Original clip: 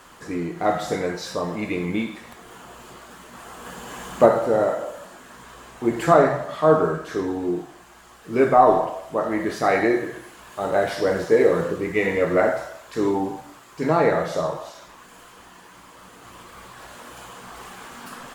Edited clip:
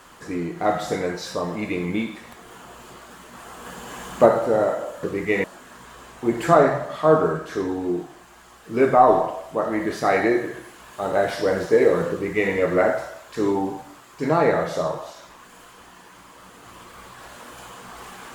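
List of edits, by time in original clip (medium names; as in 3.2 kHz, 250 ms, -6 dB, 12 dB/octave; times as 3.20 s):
11.70–12.11 s: copy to 5.03 s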